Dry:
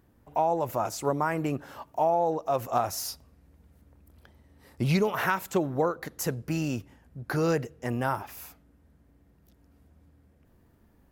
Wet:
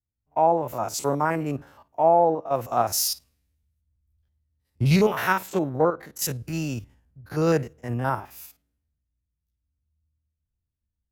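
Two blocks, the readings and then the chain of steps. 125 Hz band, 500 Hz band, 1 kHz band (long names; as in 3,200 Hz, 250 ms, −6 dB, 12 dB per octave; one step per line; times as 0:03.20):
+4.5 dB, +4.5 dB, +4.5 dB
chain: spectrum averaged block by block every 50 ms
multiband upward and downward expander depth 100%
level +3 dB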